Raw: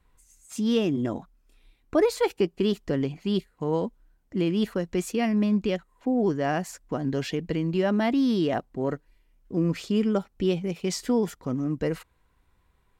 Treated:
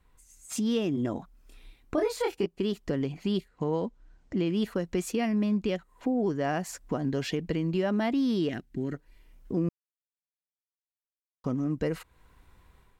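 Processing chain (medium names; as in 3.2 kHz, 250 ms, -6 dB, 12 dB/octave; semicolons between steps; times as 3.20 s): 1.95–2.46 s: doubling 26 ms -2 dB; level rider gain up to 8 dB; 3.48–4.49 s: low-pass 7.4 kHz 24 dB/octave; compression 2:1, threshold -34 dBFS, peak gain reduction 13 dB; 8.49–8.94 s: high-order bell 760 Hz -15 dB; 9.69–11.44 s: mute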